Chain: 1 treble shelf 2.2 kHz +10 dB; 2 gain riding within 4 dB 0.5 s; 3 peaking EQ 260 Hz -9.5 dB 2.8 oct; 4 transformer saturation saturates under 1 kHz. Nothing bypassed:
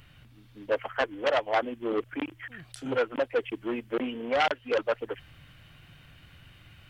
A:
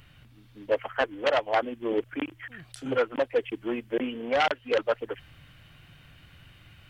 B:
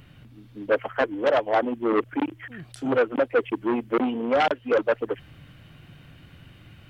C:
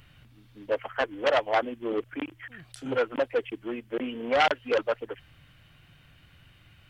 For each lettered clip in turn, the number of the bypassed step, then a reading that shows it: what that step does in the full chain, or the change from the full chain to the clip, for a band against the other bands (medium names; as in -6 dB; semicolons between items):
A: 4, loudness change +1.5 LU; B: 3, 4 kHz band -6.0 dB; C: 2, 125 Hz band -1.5 dB